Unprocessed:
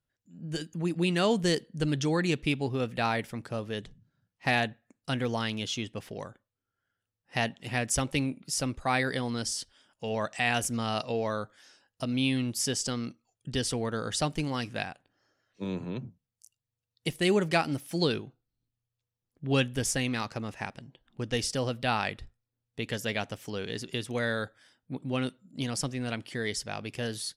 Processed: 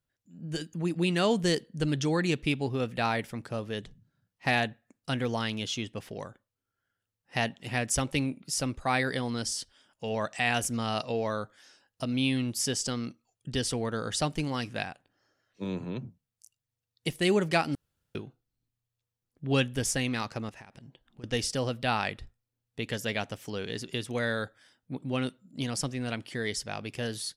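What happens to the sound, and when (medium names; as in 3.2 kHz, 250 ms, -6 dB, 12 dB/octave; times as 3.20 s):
17.75–18.15 s: room tone
20.49–21.24 s: compression 20:1, threshold -44 dBFS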